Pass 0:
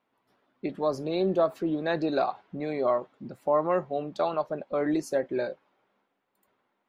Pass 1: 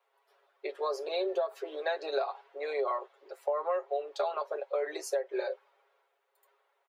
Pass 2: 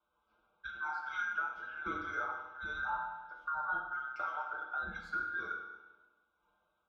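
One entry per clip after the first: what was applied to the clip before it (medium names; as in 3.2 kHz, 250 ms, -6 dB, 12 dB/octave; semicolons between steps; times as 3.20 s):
steep high-pass 390 Hz 72 dB/octave; comb 7.3 ms, depth 80%; compression 6:1, threshold -28 dBFS, peak gain reduction 11 dB
every band turned upside down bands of 2 kHz; distance through air 280 m; reverberation RT60 1.1 s, pre-delay 10 ms, DRR -0.5 dB; trim -6.5 dB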